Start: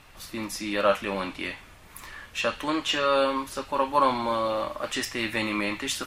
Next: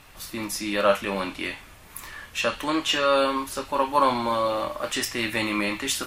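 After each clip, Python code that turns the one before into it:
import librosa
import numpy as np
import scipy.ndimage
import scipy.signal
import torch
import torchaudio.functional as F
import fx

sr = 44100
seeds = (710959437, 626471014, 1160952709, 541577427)

y = fx.high_shelf(x, sr, hz=8800.0, db=7.0)
y = fx.doubler(y, sr, ms=25.0, db=-12)
y = y * librosa.db_to_amplitude(1.5)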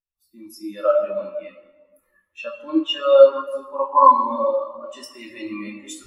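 y = fx.high_shelf(x, sr, hz=4300.0, db=10.0)
y = fx.rev_plate(y, sr, seeds[0], rt60_s=3.2, hf_ratio=0.65, predelay_ms=0, drr_db=-1.0)
y = fx.spectral_expand(y, sr, expansion=2.5)
y = y * librosa.db_to_amplitude(2.0)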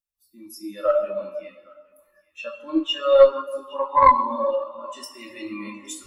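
y = fx.high_shelf(x, sr, hz=5600.0, db=6.5)
y = fx.echo_banded(y, sr, ms=816, feedback_pct=55, hz=2200.0, wet_db=-22)
y = fx.cheby_harmonics(y, sr, harmonics=(2, 4), levels_db=(-15, -33), full_scale_db=-0.5)
y = y * librosa.db_to_amplitude(-2.5)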